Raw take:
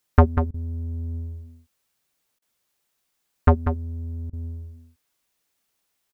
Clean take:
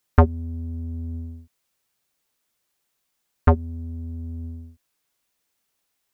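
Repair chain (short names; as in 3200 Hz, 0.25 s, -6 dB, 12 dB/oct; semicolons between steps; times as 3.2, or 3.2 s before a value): interpolate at 0.51/2.39/4.3, 29 ms; inverse comb 0.192 s -9 dB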